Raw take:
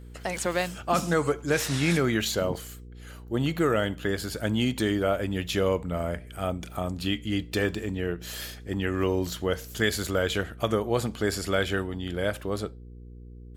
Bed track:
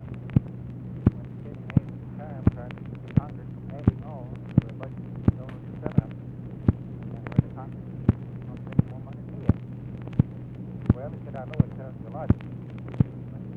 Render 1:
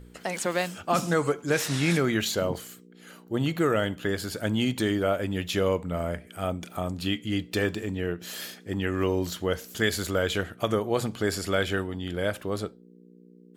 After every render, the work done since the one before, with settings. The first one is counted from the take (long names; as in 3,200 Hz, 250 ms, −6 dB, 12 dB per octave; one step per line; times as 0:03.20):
hum removal 60 Hz, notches 2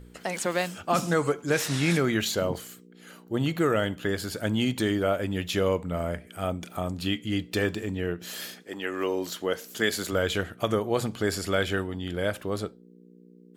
0:08.62–0:10.11: high-pass filter 440 Hz → 150 Hz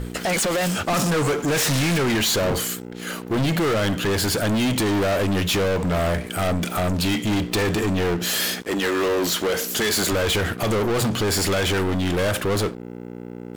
brickwall limiter −18 dBFS, peak gain reduction 7.5 dB
leveller curve on the samples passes 5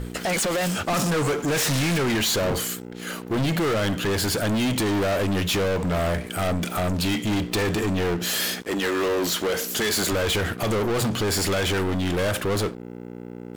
level −2 dB